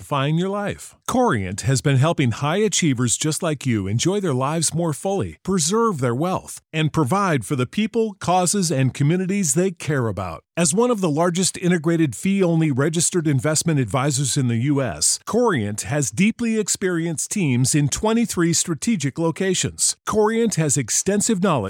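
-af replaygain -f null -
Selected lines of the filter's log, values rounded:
track_gain = +2.0 dB
track_peak = 0.369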